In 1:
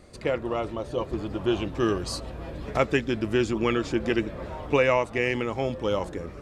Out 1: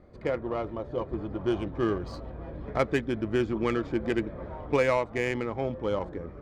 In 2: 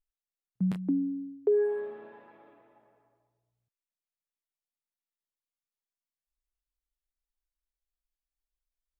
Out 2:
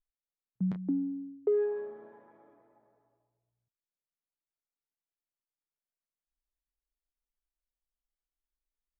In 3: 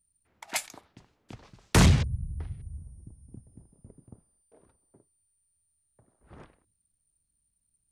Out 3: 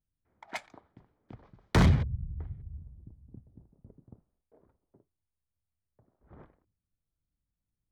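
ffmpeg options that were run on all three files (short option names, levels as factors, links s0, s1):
-af "adynamicsmooth=sensitivity=1.5:basefreq=1800,bandreject=f=2700:w=8.5,volume=0.75"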